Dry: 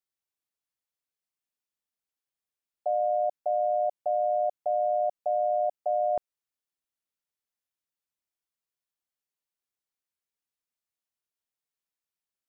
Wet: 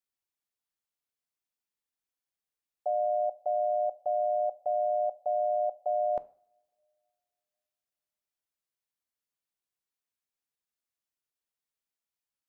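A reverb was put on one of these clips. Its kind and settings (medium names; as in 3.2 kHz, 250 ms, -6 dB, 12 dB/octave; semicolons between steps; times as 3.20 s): two-slope reverb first 0.43 s, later 2.6 s, from -28 dB, DRR 13.5 dB; trim -2 dB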